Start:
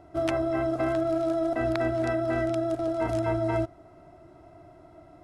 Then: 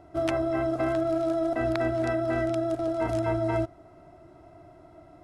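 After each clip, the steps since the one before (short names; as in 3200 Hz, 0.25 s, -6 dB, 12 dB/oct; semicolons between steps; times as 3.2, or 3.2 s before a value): nothing audible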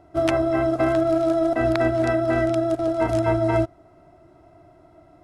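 upward expander 1.5:1, over -39 dBFS; gain +7 dB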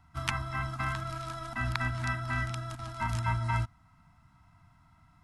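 Chebyshev band-stop 220–940 Hz, order 3; gain -2.5 dB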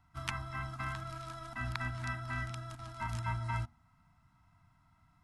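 de-hum 78.18 Hz, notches 11; gain -6 dB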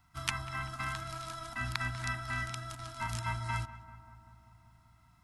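high shelf 2400 Hz +9.5 dB; darkening echo 0.193 s, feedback 77%, low-pass 1700 Hz, level -13.5 dB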